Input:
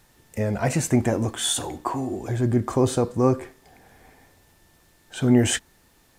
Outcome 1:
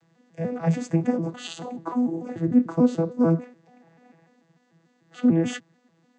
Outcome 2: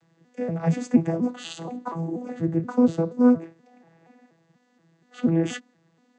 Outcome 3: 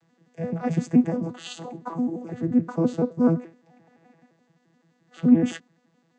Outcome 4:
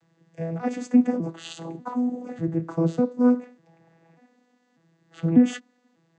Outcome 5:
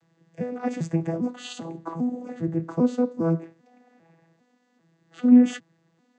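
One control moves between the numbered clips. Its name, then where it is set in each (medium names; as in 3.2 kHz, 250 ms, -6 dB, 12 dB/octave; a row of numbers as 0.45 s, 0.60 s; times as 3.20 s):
vocoder on a broken chord, a note every: 147 ms, 239 ms, 86 ms, 595 ms, 399 ms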